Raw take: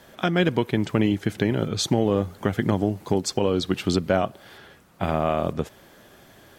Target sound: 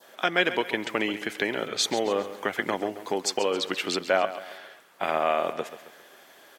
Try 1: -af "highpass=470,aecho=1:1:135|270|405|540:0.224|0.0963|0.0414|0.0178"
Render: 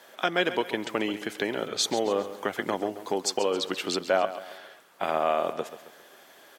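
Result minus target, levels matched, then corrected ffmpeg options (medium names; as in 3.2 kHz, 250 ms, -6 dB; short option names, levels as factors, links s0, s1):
2 kHz band -3.0 dB
-af "highpass=470,adynamicequalizer=threshold=0.00562:dfrequency=2100:dqfactor=1.5:tfrequency=2100:tqfactor=1.5:attack=5:release=100:ratio=0.417:range=3:mode=boostabove:tftype=bell,aecho=1:1:135|270|405|540:0.224|0.0963|0.0414|0.0178"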